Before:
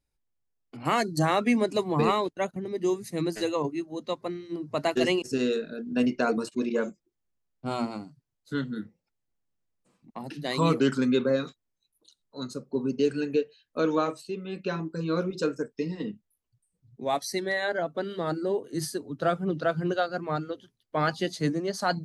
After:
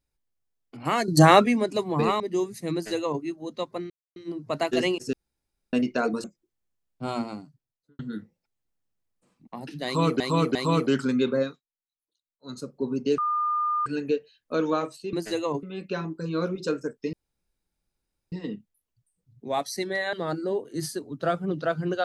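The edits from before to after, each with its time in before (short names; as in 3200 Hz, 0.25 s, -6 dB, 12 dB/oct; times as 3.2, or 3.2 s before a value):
1.08–1.46 gain +9.5 dB
2.2–2.7 cut
3.23–3.73 copy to 14.38
4.4 insert silence 0.26 s
5.37–5.97 room tone
6.48–6.87 cut
8–8.62 studio fade out
10.48–10.83 loop, 3 plays
11.35–12.48 dip -23 dB, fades 0.14 s
13.11 add tone 1210 Hz -22.5 dBFS 0.68 s
15.88 insert room tone 1.19 s
17.69–18.12 cut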